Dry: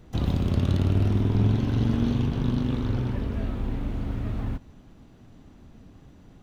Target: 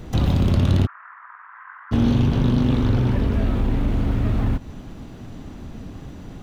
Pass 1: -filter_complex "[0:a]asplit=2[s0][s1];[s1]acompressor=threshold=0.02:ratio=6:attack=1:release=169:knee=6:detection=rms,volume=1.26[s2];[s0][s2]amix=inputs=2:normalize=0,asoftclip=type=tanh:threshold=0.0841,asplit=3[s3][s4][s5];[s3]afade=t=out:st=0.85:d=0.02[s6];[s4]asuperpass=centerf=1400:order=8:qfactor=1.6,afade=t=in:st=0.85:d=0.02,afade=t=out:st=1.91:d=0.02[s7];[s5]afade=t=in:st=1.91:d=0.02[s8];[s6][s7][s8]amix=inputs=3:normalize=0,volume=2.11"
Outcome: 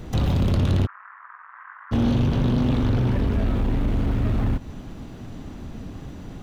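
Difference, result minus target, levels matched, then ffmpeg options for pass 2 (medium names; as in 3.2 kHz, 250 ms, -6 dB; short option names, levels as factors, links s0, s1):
saturation: distortion +6 dB
-filter_complex "[0:a]asplit=2[s0][s1];[s1]acompressor=threshold=0.02:ratio=6:attack=1:release=169:knee=6:detection=rms,volume=1.26[s2];[s0][s2]amix=inputs=2:normalize=0,asoftclip=type=tanh:threshold=0.168,asplit=3[s3][s4][s5];[s3]afade=t=out:st=0.85:d=0.02[s6];[s4]asuperpass=centerf=1400:order=8:qfactor=1.6,afade=t=in:st=0.85:d=0.02,afade=t=out:st=1.91:d=0.02[s7];[s5]afade=t=in:st=1.91:d=0.02[s8];[s6][s7][s8]amix=inputs=3:normalize=0,volume=2.11"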